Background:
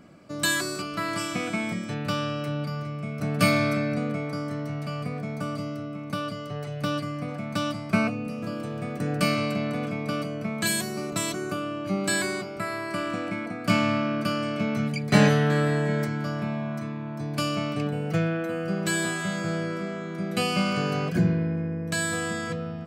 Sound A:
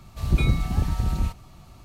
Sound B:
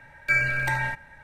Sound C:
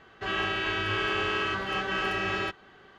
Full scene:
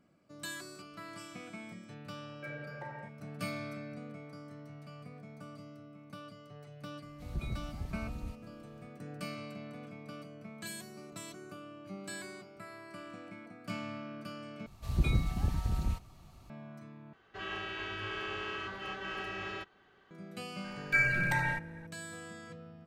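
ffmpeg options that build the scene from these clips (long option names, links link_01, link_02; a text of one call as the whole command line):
ffmpeg -i bed.wav -i cue0.wav -i cue1.wav -i cue2.wav -filter_complex "[2:a]asplit=2[link_01][link_02];[1:a]asplit=2[link_03][link_04];[0:a]volume=-17.5dB[link_05];[link_01]bandpass=frequency=490:width_type=q:width=2.7:csg=0[link_06];[link_05]asplit=3[link_07][link_08][link_09];[link_07]atrim=end=14.664[link_10];[link_04]atrim=end=1.84,asetpts=PTS-STARTPTS,volume=-8dB[link_11];[link_08]atrim=start=16.496:end=17.134[link_12];[3:a]atrim=end=2.98,asetpts=PTS-STARTPTS,volume=-10.5dB[link_13];[link_09]atrim=start=20.106[link_14];[link_06]atrim=end=1.23,asetpts=PTS-STARTPTS,volume=-5dB,afade=type=in:duration=0.004:curve=hsin,afade=type=out:start_time=1.226:duration=0.004:curve=hsin,adelay=2140[link_15];[link_03]atrim=end=1.84,asetpts=PTS-STARTPTS,volume=-17.5dB,afade=type=in:duration=0.004:curve=hsin,afade=type=out:start_time=1.836:duration=0.004:curve=hsin,adelay=7030[link_16];[link_02]atrim=end=1.23,asetpts=PTS-STARTPTS,volume=-5dB,afade=type=in:duration=0.004:curve=hsin,afade=type=out:start_time=1.226:duration=0.004:curve=hsin,adelay=20640[link_17];[link_10][link_11]acrossfade=duration=0.004:curve1=hsin:curve2=hsin[link_18];[link_18][link_12]acrossfade=duration=0.004:curve1=hsin:curve2=hsin[link_19];[link_19][link_13]acrossfade=duration=0.004:curve1=hsin:curve2=hsin[link_20];[link_20][link_14]acrossfade=duration=0.004:curve1=hsin:curve2=hsin[link_21];[link_21][link_15][link_16][link_17]amix=inputs=4:normalize=0" out.wav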